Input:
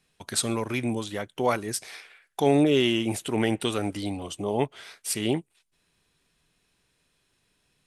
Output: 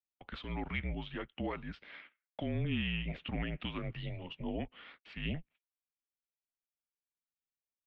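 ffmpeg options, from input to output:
ffmpeg -i in.wav -filter_complex "[0:a]agate=range=-28dB:threshold=-48dB:ratio=16:detection=peak,acrossover=split=160[link_01][link_02];[link_02]alimiter=limit=-18.5dB:level=0:latency=1:release=231[link_03];[link_01][link_03]amix=inputs=2:normalize=0,highpass=frequency=160:width_type=q:width=0.5412,highpass=frequency=160:width_type=q:width=1.307,lowpass=frequency=3200:width_type=q:width=0.5176,lowpass=frequency=3200:width_type=q:width=0.7071,lowpass=frequency=3200:width_type=q:width=1.932,afreqshift=-170,adynamicequalizer=threshold=0.00355:dfrequency=2200:dqfactor=0.7:tfrequency=2200:tqfactor=0.7:attack=5:release=100:ratio=0.375:range=3.5:mode=boostabove:tftype=highshelf,volume=-8.5dB" out.wav

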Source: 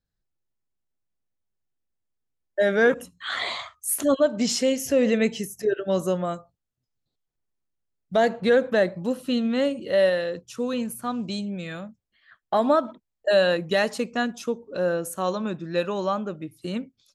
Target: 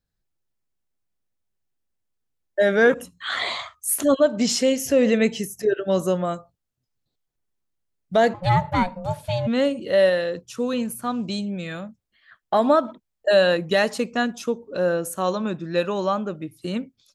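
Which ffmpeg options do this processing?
ffmpeg -i in.wav -filter_complex "[0:a]asplit=3[link_01][link_02][link_03];[link_01]afade=type=out:start_time=8.33:duration=0.02[link_04];[link_02]aeval=exprs='val(0)*sin(2*PI*360*n/s)':channel_layout=same,afade=type=in:start_time=8.33:duration=0.02,afade=type=out:start_time=9.46:duration=0.02[link_05];[link_03]afade=type=in:start_time=9.46:duration=0.02[link_06];[link_04][link_05][link_06]amix=inputs=3:normalize=0,volume=2.5dB" out.wav

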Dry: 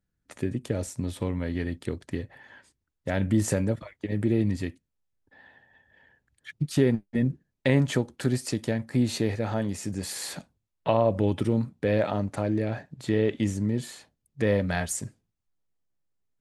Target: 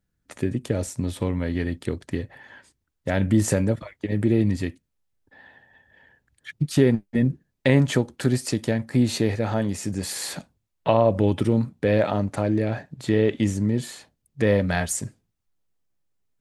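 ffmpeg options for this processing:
ffmpeg -i in.wav -af "volume=4dB" out.wav

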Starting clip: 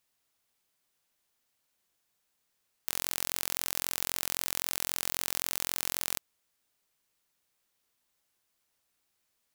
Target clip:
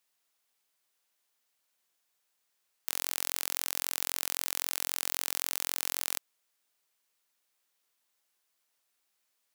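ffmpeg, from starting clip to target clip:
ffmpeg -i in.wav -af "highpass=frequency=470:poles=1" out.wav

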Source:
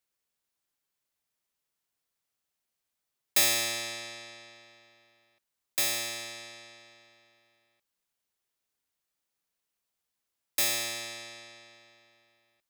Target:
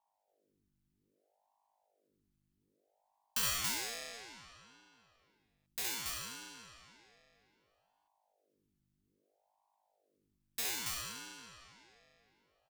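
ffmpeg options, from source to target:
ffmpeg -i in.wav -af "aeval=exprs='val(0)+0.000282*(sin(2*PI*50*n/s)+sin(2*PI*2*50*n/s)/2+sin(2*PI*3*50*n/s)/3+sin(2*PI*4*50*n/s)/4+sin(2*PI*5*50*n/s)/5)':channel_layout=same,aecho=1:1:67.06|279.9:0.708|0.708,aeval=exprs='val(0)*sin(2*PI*480*n/s+480*0.85/0.62*sin(2*PI*0.62*n/s))':channel_layout=same,volume=-8.5dB" out.wav

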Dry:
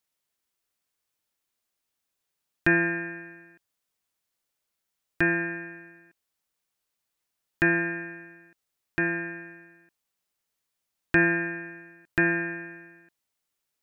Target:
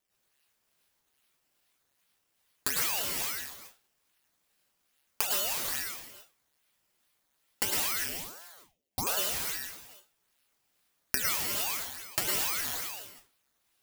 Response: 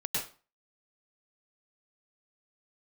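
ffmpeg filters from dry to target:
-filter_complex "[0:a]asettb=1/sr,asplit=3[link_01][link_02][link_03];[link_01]atrim=end=7.944[link_04];[link_02]atrim=start=7.94:end=9.07,asetpts=PTS-STARTPTS,afade=type=in:duration=0.004:curve=qsin,afade=type=out:start_time=1.126:duration=0.004:curve=qsin,lowpass=frequency=490:width_type=q:width=4.9[link_05];[link_03]atrim=start=9.066[link_06];[link_04][link_05]acrossfade=duration=0.004:curve1=hsin:curve2=qsin[link_07];[link_07][link_06]acrossfade=duration=0.004:curve1=qsin:curve2=hsin,acrusher=samples=12:mix=1:aa=0.000001:lfo=1:lforange=12:lforate=2.4,crystalizer=i=8.5:c=0[link_08];[1:a]atrim=start_sample=2205[link_09];[link_08][link_09]afir=irnorm=-1:irlink=0,acompressor=threshold=-16dB:ratio=12,aeval=exprs='val(0)*sin(2*PI*650*n/s+650*0.9/1.3*sin(2*PI*1.3*n/s))':channel_layout=same,volume=-7dB"

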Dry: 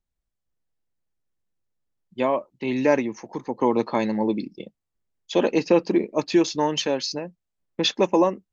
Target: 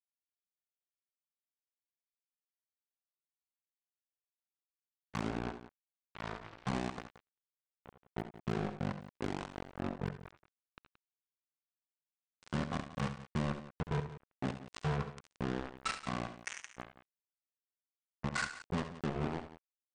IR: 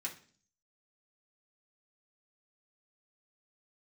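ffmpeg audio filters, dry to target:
-filter_complex "[0:a]highpass=190,equalizer=frequency=2000:width=0.62:gain=5,bandreject=frequency=1100:width=6.6,acompressor=threshold=-21dB:ratio=4,asoftclip=type=hard:threshold=-18.5dB,acrusher=bits=2:mix=0:aa=0.5,asetrate=18846,aresample=44100,asplit=2[link_01][link_02];[link_02]aecho=0:1:69|83|175:0.266|0.168|0.178[link_03];[link_01][link_03]amix=inputs=2:normalize=0,volume=1.5dB"

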